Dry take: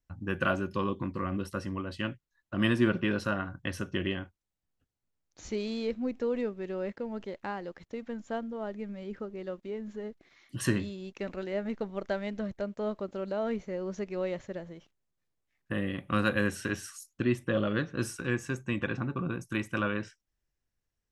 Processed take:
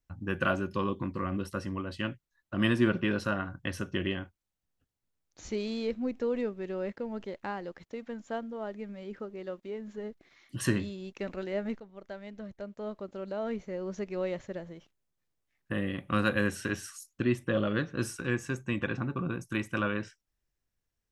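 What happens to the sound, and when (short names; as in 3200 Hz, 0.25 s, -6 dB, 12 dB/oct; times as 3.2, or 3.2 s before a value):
7.83–9.98 low shelf 150 Hz -7.5 dB
11.8–14.14 fade in, from -14.5 dB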